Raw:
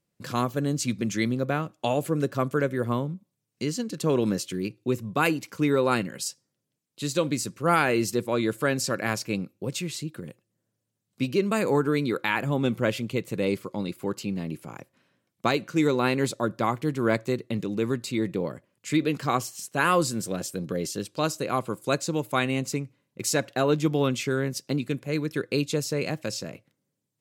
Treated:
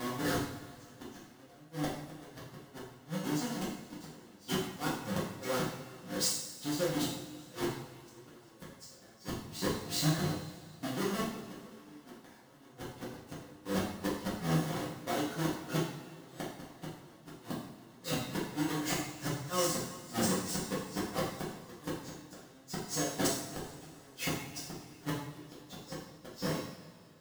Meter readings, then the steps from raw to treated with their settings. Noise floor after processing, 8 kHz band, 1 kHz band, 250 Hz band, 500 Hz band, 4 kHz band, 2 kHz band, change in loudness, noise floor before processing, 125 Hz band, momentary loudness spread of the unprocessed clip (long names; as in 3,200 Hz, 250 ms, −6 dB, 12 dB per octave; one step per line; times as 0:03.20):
−57 dBFS, −4.5 dB, −11.0 dB, −10.0 dB, −12.5 dB, −5.0 dB, −11.5 dB, −9.0 dB, −81 dBFS, −9.5 dB, 9 LU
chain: each half-wave held at its own peak
high-pass filter 42 Hz 6 dB per octave
notch filter 2,400 Hz, Q 8.6
downward compressor 4 to 1, threshold −22 dBFS, peak gain reduction 8.5 dB
tuned comb filter 100 Hz, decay 0.48 s, harmonics odd, mix 70%
backwards echo 377 ms −8.5 dB
gate with flip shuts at −27 dBFS, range −33 dB
coupled-rooms reverb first 0.62 s, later 2.6 s, from −16 dB, DRR −9 dB